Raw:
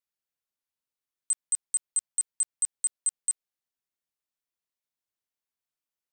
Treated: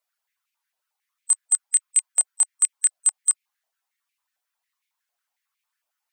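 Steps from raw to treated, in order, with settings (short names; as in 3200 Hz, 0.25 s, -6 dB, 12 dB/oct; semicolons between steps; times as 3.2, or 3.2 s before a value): bin magnitudes rounded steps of 15 dB; stepped high-pass 11 Hz 690–2300 Hz; gain +8 dB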